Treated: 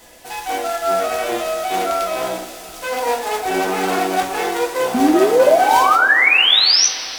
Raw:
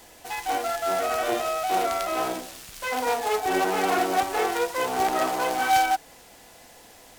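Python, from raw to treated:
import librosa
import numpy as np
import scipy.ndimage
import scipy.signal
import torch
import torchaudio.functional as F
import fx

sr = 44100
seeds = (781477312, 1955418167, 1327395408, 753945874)

y = fx.spec_paint(x, sr, seeds[0], shape='rise', start_s=4.94, length_s=1.93, low_hz=240.0, high_hz=6200.0, level_db=-18.0)
y = fx.rev_double_slope(y, sr, seeds[1], early_s=0.25, late_s=3.9, knee_db=-20, drr_db=0.0)
y = y * 10.0 ** (2.0 / 20.0)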